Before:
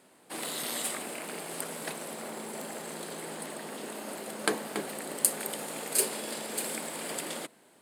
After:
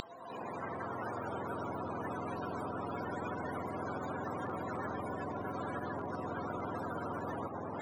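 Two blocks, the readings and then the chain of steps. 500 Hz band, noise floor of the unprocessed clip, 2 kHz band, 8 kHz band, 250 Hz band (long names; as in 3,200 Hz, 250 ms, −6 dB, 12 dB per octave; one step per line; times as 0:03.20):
−2.0 dB, −61 dBFS, −5.5 dB, −33.5 dB, +0.5 dB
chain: frequency axis turned over on the octave scale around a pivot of 400 Hz
in parallel at +3 dB: downward compressor, threshold −48 dBFS, peak gain reduction 21.5 dB
on the sum: brickwall limiter −29.5 dBFS, peak gain reduction 11 dB
high-pass filter sweep 3,700 Hz → 270 Hz, 0:00.20–0:01.71
backwards echo 606 ms −23.5 dB
every bin compressed towards the loudest bin 10 to 1
level +5 dB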